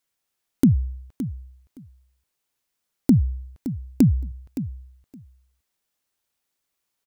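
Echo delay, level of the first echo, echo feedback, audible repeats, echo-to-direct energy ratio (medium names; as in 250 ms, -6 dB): 567 ms, -12.5 dB, 15%, 2, -12.5 dB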